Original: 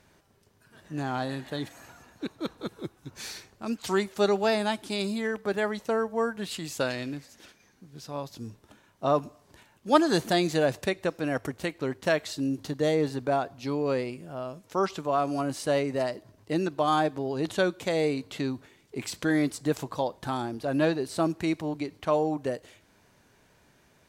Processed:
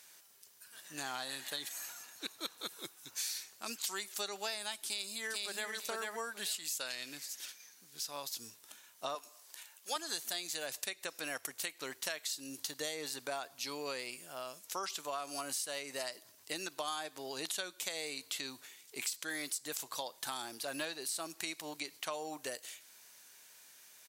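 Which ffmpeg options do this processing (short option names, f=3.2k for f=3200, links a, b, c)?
-filter_complex "[0:a]asplit=2[a][b];[b]afade=t=in:st=4.86:d=0.01,afade=t=out:st=5.72:d=0.01,aecho=0:1:440|880|1320:0.707946|0.106192|0.0159288[c];[a][c]amix=inputs=2:normalize=0,asettb=1/sr,asplit=3[d][e][f];[d]atrim=end=9.154[g];[e]atrim=start=9.15:end=9.96,asetpts=PTS-STARTPTS,afade=t=in:d=0.004:c=qsin,afade=t=out:st=0.806:d=0.004:c=qsin,highpass=440[h];[f]atrim=start=9.956[i];[g][h]acrossfade=d=0.004:c1=hsin:c2=qsin[j];[j][i]acrossfade=d=0.004:c1=qsin:c2=hsin,aderivative,acompressor=threshold=-48dB:ratio=6,volume=12dB"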